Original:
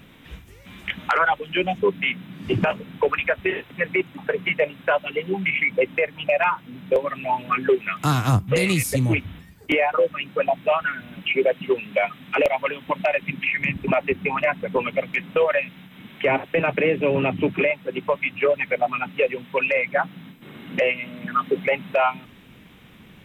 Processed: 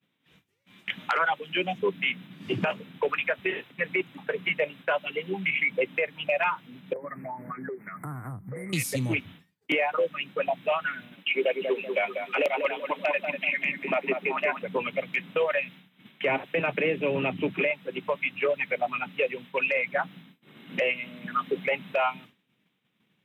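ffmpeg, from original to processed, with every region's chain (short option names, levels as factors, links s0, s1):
-filter_complex "[0:a]asettb=1/sr,asplit=3[s0][s1][s2];[s0]atrim=end=6.934[s3];[s1]atrim=start=6.93:end=8.73,asetpts=PTS-STARTPTS,afade=t=in:d=0.004:c=qsin,afade=t=out:st=1.796:d=0.004:c=qsin,lowshelf=f=180:g=7.5,acompressor=threshold=0.0501:ratio=10:attack=3.2:release=140:knee=1:detection=peak,asuperstop=centerf=4300:order=20:qfactor=0.7[s4];[s2]atrim=start=8.726[s5];[s3][s4]acrossfade=d=0.004:c1=hsin:c2=qsin[s6];[s6][s5]acrossfade=d=0.004:c1=qsin:c2=hsin,asettb=1/sr,asplit=3[s7][s8][s9];[s7]atrim=end=11.154[s10];[s8]atrim=start=11.15:end=14.62,asetpts=PTS-STARTPTS,afade=t=in:d=0.004:c=qsin,afade=t=out:st=3.466:d=0.004:c=qsin,highpass=f=220:w=0.5412,highpass=f=220:w=1.3066,asplit=2[s11][s12];[s12]adelay=192,lowpass=f=1700:p=1,volume=0.531,asplit=2[s13][s14];[s14]adelay=192,lowpass=f=1700:p=1,volume=0.36,asplit=2[s15][s16];[s16]adelay=192,lowpass=f=1700:p=1,volume=0.36,asplit=2[s17][s18];[s18]adelay=192,lowpass=f=1700:p=1,volume=0.36[s19];[s11][s13][s15][s17][s19]amix=inputs=5:normalize=0,atrim=end_sample=153027[s20];[s9]atrim=start=14.616[s21];[s10][s20]acrossfade=d=0.004:c1=hsin:c2=qsin[s22];[s22][s21]acrossfade=d=0.004:c1=qsin:c2=hsin,highpass=f=120:w=0.5412,highpass=f=120:w=1.3066,agate=range=0.0224:threshold=0.0158:ratio=3:detection=peak,equalizer=f=3700:t=o:w=1.6:g=4.5,volume=0.473"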